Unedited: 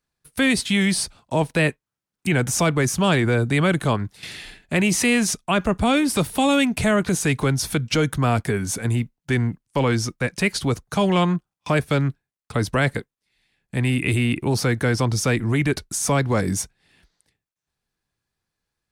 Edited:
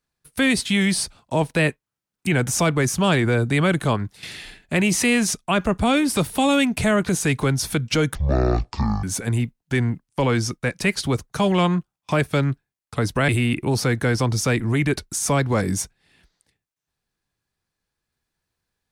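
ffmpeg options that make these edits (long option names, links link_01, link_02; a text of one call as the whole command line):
ffmpeg -i in.wav -filter_complex "[0:a]asplit=4[link_01][link_02][link_03][link_04];[link_01]atrim=end=8.154[link_05];[link_02]atrim=start=8.15:end=8.61,asetpts=PTS-STARTPTS,asetrate=22932,aresample=44100[link_06];[link_03]atrim=start=8.606:end=12.862[link_07];[link_04]atrim=start=14.078[link_08];[link_05][link_06]acrossfade=duration=0.004:curve1=hsin:curve2=hsin[link_09];[link_09][link_07]acrossfade=duration=0.004:curve1=hsin:curve2=hsin[link_10];[link_10][link_08]acrossfade=duration=0.004:curve1=hsin:curve2=hsin" out.wav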